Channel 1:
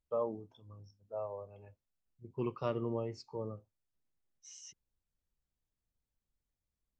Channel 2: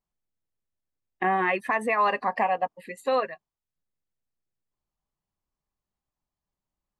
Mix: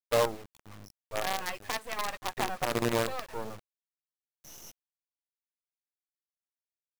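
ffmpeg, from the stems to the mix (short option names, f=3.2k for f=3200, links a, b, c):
-filter_complex "[0:a]aeval=exprs='val(0)+0.000178*(sin(2*PI*50*n/s)+sin(2*PI*2*50*n/s)/2+sin(2*PI*3*50*n/s)/3+sin(2*PI*4*50*n/s)/4+sin(2*PI*5*50*n/s)/5)':c=same,volume=1dB[a];[1:a]equalizer=f=200:t=o:w=0.33:g=-12,equalizer=f=400:t=o:w=0.33:g=-9,equalizer=f=1k:t=o:w=0.33:g=-3,volume=-14.5dB,asplit=2[b][c];[c]apad=whole_len=308453[d];[a][d]sidechaincompress=threshold=-47dB:ratio=5:attack=16:release=123[e];[e][b]amix=inputs=2:normalize=0,equalizer=f=860:w=1.7:g=4.5,acontrast=25,acrusher=bits=5:dc=4:mix=0:aa=0.000001"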